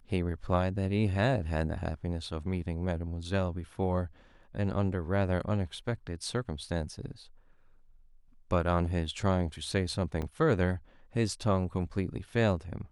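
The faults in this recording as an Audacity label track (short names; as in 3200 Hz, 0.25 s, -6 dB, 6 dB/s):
10.220000	10.220000	gap 3.9 ms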